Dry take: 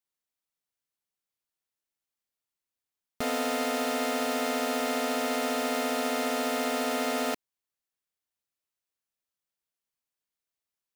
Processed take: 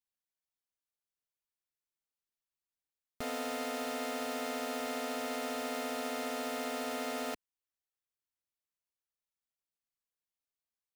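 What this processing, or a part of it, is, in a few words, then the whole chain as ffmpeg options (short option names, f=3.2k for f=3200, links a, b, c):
low shelf boost with a cut just above: -af "lowshelf=f=98:g=6.5,equalizer=f=190:t=o:w=0.93:g=-2.5,volume=-8dB"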